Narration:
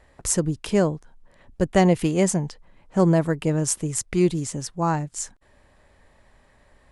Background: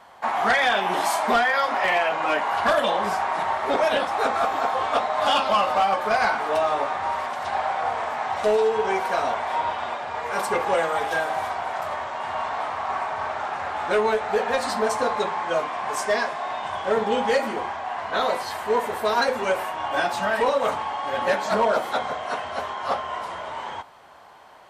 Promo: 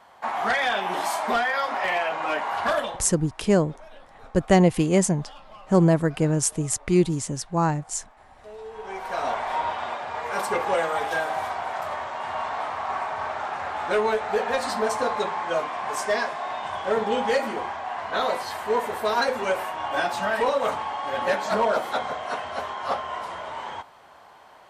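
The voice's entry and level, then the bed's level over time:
2.75 s, +0.5 dB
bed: 2.79 s -3.5 dB
3.15 s -26.5 dB
8.36 s -26.5 dB
9.29 s -1.5 dB

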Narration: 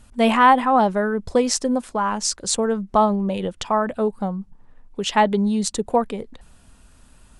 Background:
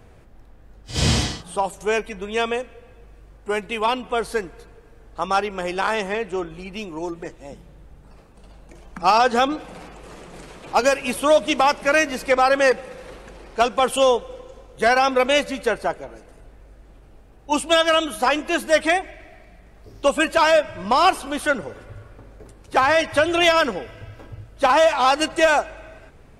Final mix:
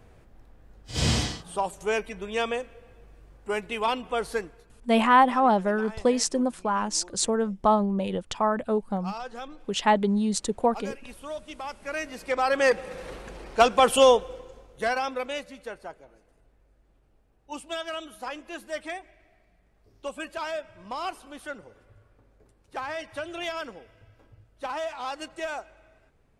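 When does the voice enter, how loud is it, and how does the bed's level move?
4.70 s, -4.0 dB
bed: 4.38 s -5 dB
4.97 s -20.5 dB
11.56 s -20.5 dB
12.96 s 0 dB
14.11 s 0 dB
15.48 s -16.5 dB

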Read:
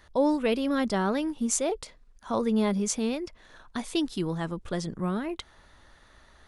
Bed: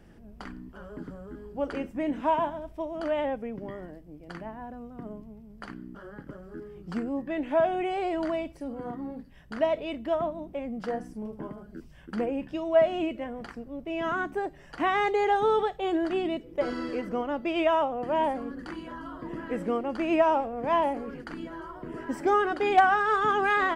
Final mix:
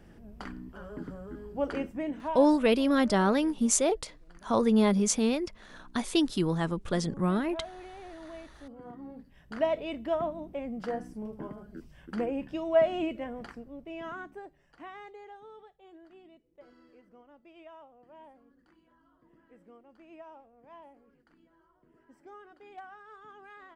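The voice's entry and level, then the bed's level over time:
2.20 s, +2.0 dB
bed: 1.82 s 0 dB
2.75 s -17 dB
8.16 s -17 dB
9.62 s -2 dB
13.38 s -2 dB
15.48 s -26.5 dB

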